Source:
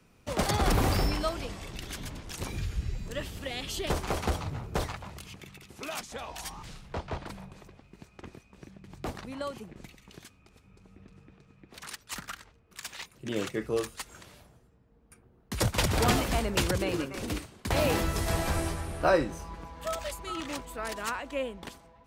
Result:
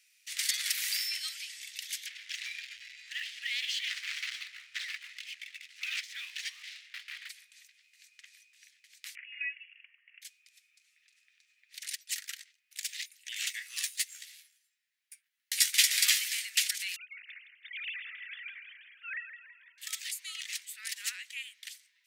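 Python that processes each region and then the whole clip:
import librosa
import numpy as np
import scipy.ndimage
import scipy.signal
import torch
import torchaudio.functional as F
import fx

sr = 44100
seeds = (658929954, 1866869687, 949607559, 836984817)

y = fx.chain(x, sr, fx.cvsd(bps=64000),
    fx.lowpass(hz=2900.0, slope=12),
    fx.leveller(passes=2), at=(2.06, 7.29))
y = fx.chain(y, sr, fx.highpass(hz=540.0, slope=12),
    fx.freq_invert(carrier_hz=3100), at=(9.15, 10.22))
y = fx.chain(y, sr, fx.peak_eq(hz=270.0, db=14.5, octaves=0.83),
    fx.leveller(passes=1),
    fx.doubler(ms=14.0, db=-7.0), at=(13.39, 16.18))
y = fx.chain(y, sr, fx.sine_speech(),
    fx.echo_feedback(ms=164, feedback_pct=49, wet_db=-10), at=(16.96, 19.78))
y = scipy.signal.sosfilt(scipy.signal.ellip(4, 1.0, 60, 1900.0, 'highpass', fs=sr, output='sos'), y)
y = fx.peak_eq(y, sr, hz=14000.0, db=6.5, octaves=2.5)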